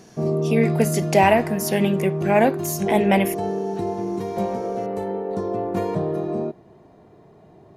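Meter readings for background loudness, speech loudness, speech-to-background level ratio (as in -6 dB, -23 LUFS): -25.5 LUFS, -21.0 LUFS, 4.5 dB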